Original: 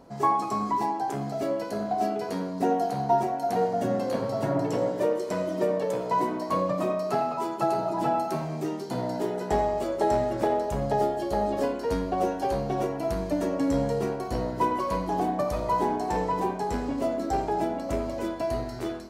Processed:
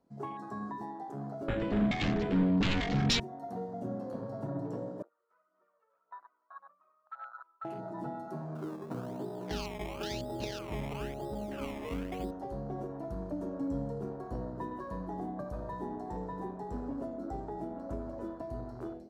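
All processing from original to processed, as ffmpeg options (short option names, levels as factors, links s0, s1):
-filter_complex "[0:a]asettb=1/sr,asplit=3[s0][s1][s2];[s0]atrim=end=1.484[s3];[s1]atrim=start=1.48:end=3.2,asetpts=PTS-STARTPTS,afade=t=in:d=0.004:c=qsin,afade=t=out:st=1.716:d=0.004:c=qsin,lowpass=f=3700:w=0.5412,lowpass=f=3700:w=1.3066,aeval=exprs='0.251*sin(PI/2*5.62*val(0)/0.251)':c=same[s4];[s2]atrim=start=3.196[s5];[s3][s4]acrossfade=d=0.004:c1=hsin:c2=qsin[s6];[s6][s5]acrossfade=d=0.004:c1=qsin:c2=hsin,asettb=1/sr,asplit=3[s7][s8][s9];[s7]atrim=end=5.024[s10];[s8]atrim=start=5.02:end=7.65,asetpts=PTS-STARTPTS,afade=t=in:d=0.004:c=qsin,afade=t=out:st=2.626:d=0.004:c=qsin,aphaser=in_gain=1:out_gain=1:delay=2.3:decay=0.48:speed=1.8:type=sinusoidal,bandpass=f=1300:t=q:w=14[s11];[s9]atrim=start=7.646[s12];[s10][s11]acrossfade=d=0.004:c1=hsin:c2=qsin[s13];[s13][s12]acrossfade=d=0.004:c1=qsin:c2=hsin,asettb=1/sr,asplit=3[s14][s15][s16];[s14]atrim=end=8.554[s17];[s15]atrim=start=8.55:end=12.31,asetpts=PTS-STARTPTS,afade=t=in:d=0.004:c=qsin,afade=t=out:st=3.756:d=0.004:c=qsin,aecho=1:1:286:0.596,atrim=end_sample=165816,acrusher=samples=20:mix=1:aa=0.000001:lfo=1:lforange=20:lforate=1[s18];[s16]atrim=start=12.306[s19];[s17][s18]acrossfade=d=0.004:c1=hsin:c2=qsin[s20];[s20][s19]acrossfade=d=0.004:c1=qsin:c2=hsin,afwtdn=0.02,acrossover=split=310|3000[s21][s22][s23];[s22]acompressor=threshold=0.02:ratio=6[s24];[s21][s24][s23]amix=inputs=3:normalize=0,volume=0.447"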